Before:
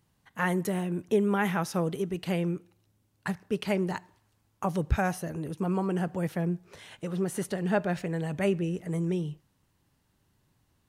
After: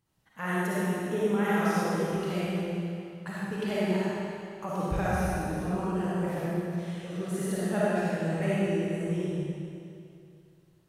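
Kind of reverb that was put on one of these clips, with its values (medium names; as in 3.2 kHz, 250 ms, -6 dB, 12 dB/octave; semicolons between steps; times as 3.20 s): algorithmic reverb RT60 2.5 s, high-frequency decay 0.95×, pre-delay 15 ms, DRR -9 dB; trim -8.5 dB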